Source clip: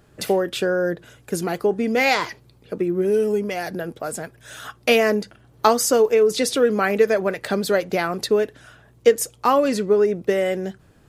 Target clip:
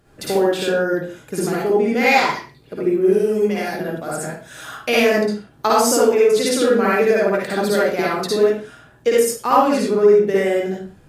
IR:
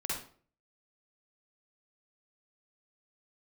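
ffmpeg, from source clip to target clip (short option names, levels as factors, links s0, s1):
-filter_complex "[1:a]atrim=start_sample=2205,afade=t=out:st=0.28:d=0.01,atrim=end_sample=12789,asetrate=39249,aresample=44100[s0];[0:a][s0]afir=irnorm=-1:irlink=0,volume=0.891"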